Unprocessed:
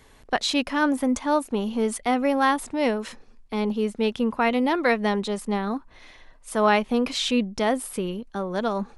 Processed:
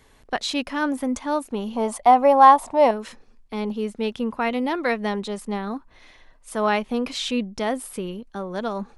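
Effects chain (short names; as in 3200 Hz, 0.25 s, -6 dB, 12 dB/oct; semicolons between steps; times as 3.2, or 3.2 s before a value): 1.76–2.91 band shelf 800 Hz +14 dB 1.2 oct; gain -2 dB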